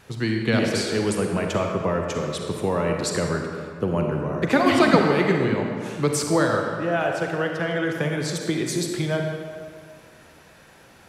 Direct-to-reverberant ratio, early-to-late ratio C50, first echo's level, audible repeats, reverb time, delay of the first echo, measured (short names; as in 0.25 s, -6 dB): 2.0 dB, 2.5 dB, none, none, 2.1 s, none